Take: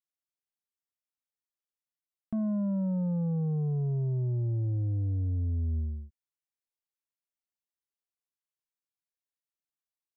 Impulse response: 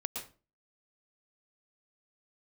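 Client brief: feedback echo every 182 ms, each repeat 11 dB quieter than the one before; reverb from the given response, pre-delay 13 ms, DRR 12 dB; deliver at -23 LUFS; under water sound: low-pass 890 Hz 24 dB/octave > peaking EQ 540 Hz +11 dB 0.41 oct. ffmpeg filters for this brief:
-filter_complex "[0:a]aecho=1:1:182|364|546:0.282|0.0789|0.0221,asplit=2[s0][s1];[1:a]atrim=start_sample=2205,adelay=13[s2];[s1][s2]afir=irnorm=-1:irlink=0,volume=0.211[s3];[s0][s3]amix=inputs=2:normalize=0,lowpass=f=890:w=0.5412,lowpass=f=890:w=1.3066,equalizer=f=540:t=o:w=0.41:g=11,volume=2.24"

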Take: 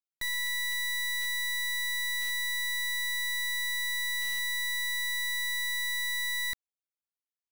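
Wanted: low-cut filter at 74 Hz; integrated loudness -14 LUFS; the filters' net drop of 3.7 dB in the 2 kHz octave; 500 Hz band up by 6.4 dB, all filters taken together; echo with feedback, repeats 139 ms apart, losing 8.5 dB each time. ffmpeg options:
-af "highpass=74,equalizer=f=500:t=o:g=8,equalizer=f=2000:t=o:g=-4,aecho=1:1:139|278|417|556:0.376|0.143|0.0543|0.0206,volume=7.5"

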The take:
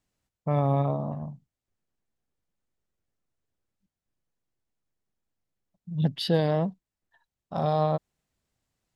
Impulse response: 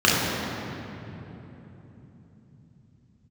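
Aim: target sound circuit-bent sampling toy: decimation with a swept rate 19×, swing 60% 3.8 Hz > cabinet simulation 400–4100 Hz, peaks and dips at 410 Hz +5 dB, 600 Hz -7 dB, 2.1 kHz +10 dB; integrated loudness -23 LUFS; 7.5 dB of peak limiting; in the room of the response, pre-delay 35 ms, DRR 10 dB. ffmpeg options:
-filter_complex "[0:a]alimiter=limit=0.119:level=0:latency=1,asplit=2[s0][s1];[1:a]atrim=start_sample=2205,adelay=35[s2];[s1][s2]afir=irnorm=-1:irlink=0,volume=0.0251[s3];[s0][s3]amix=inputs=2:normalize=0,acrusher=samples=19:mix=1:aa=0.000001:lfo=1:lforange=11.4:lforate=3.8,highpass=400,equalizer=f=410:t=q:w=4:g=5,equalizer=f=600:t=q:w=4:g=-7,equalizer=f=2100:t=q:w=4:g=10,lowpass=f=4100:w=0.5412,lowpass=f=4100:w=1.3066,volume=3.76"

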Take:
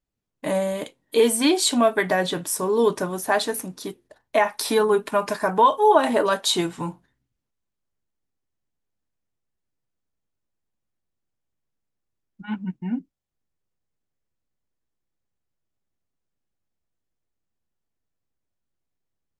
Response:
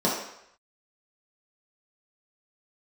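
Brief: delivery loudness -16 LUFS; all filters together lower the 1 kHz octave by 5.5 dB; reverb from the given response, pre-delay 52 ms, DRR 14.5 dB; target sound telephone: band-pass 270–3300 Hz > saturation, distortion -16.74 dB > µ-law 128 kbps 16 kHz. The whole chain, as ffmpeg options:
-filter_complex "[0:a]equalizer=f=1000:t=o:g=-6.5,asplit=2[s0][s1];[1:a]atrim=start_sample=2205,adelay=52[s2];[s1][s2]afir=irnorm=-1:irlink=0,volume=0.0355[s3];[s0][s3]amix=inputs=2:normalize=0,highpass=270,lowpass=3300,asoftclip=threshold=0.188,volume=3.16" -ar 16000 -c:a pcm_mulaw

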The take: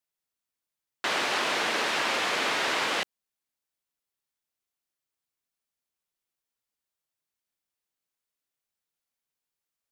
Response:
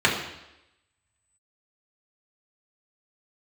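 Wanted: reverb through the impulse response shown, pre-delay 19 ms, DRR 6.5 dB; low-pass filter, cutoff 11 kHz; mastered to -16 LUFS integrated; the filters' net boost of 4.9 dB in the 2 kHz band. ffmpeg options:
-filter_complex "[0:a]lowpass=11000,equalizer=f=2000:t=o:g=6,asplit=2[s0][s1];[1:a]atrim=start_sample=2205,adelay=19[s2];[s1][s2]afir=irnorm=-1:irlink=0,volume=0.0562[s3];[s0][s3]amix=inputs=2:normalize=0,volume=2.11"

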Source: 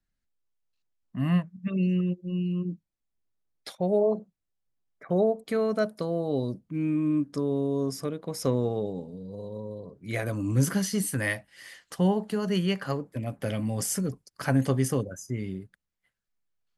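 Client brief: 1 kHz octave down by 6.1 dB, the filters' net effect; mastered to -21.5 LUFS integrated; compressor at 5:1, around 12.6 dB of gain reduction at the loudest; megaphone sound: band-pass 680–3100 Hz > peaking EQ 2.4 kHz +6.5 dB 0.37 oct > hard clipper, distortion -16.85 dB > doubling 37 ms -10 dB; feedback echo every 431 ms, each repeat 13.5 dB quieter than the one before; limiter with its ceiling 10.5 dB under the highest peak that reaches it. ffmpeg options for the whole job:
-filter_complex "[0:a]equalizer=f=1000:t=o:g=-6.5,acompressor=threshold=0.0224:ratio=5,alimiter=level_in=2.24:limit=0.0631:level=0:latency=1,volume=0.447,highpass=680,lowpass=3100,equalizer=f=2400:t=o:w=0.37:g=6.5,aecho=1:1:431|862:0.211|0.0444,asoftclip=type=hard:threshold=0.0106,asplit=2[s0][s1];[s1]adelay=37,volume=0.316[s2];[s0][s2]amix=inputs=2:normalize=0,volume=26.6"

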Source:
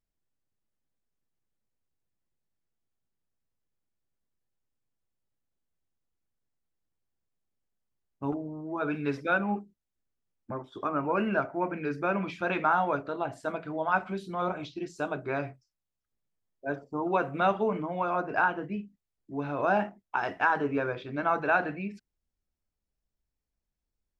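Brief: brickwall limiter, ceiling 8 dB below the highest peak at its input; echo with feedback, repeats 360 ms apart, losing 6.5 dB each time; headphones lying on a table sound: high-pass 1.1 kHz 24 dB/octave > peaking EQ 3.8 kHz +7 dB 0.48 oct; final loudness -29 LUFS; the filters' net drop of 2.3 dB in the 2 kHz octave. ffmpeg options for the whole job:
-af "equalizer=f=2000:t=o:g=-3.5,alimiter=limit=0.0891:level=0:latency=1,highpass=f=1100:w=0.5412,highpass=f=1100:w=1.3066,equalizer=f=3800:t=o:w=0.48:g=7,aecho=1:1:360|720|1080|1440|1800|2160:0.473|0.222|0.105|0.0491|0.0231|0.0109,volume=3.35"

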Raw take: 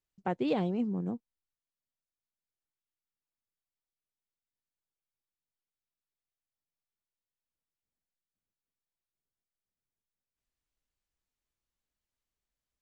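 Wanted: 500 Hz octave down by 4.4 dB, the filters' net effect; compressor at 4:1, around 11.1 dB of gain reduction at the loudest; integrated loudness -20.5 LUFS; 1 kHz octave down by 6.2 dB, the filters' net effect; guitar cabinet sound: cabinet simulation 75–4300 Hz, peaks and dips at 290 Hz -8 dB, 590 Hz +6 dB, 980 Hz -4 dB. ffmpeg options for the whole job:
-af "equalizer=f=500:t=o:g=-5.5,equalizer=f=1000:t=o:g=-6.5,acompressor=threshold=0.00708:ratio=4,highpass=75,equalizer=f=290:t=q:w=4:g=-8,equalizer=f=590:t=q:w=4:g=6,equalizer=f=980:t=q:w=4:g=-4,lowpass=f=4300:w=0.5412,lowpass=f=4300:w=1.3066,volume=20"

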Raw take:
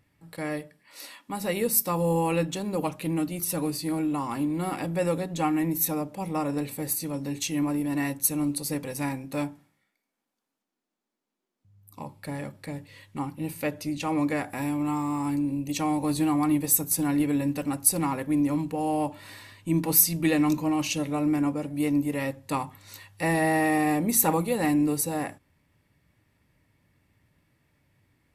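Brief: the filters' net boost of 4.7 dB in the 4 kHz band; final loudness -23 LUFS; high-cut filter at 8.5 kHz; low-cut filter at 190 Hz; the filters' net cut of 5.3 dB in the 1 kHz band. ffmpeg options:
-af "highpass=190,lowpass=8500,equalizer=f=1000:t=o:g=-7.5,equalizer=f=4000:t=o:g=6.5,volume=2"

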